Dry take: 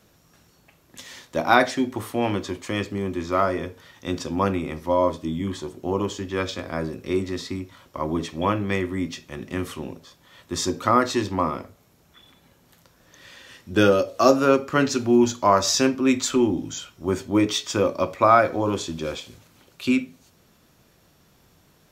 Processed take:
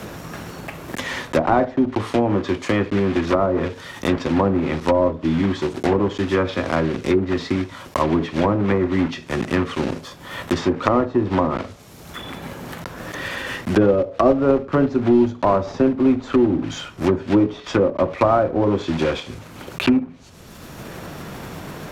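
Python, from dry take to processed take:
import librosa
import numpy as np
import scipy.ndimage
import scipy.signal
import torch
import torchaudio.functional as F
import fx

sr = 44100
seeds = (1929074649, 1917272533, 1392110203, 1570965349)

y = fx.block_float(x, sr, bits=3)
y = fx.env_lowpass_down(y, sr, base_hz=750.0, full_db=-18.5)
y = fx.band_squash(y, sr, depth_pct=70)
y = F.gain(torch.from_numpy(y), 5.5).numpy()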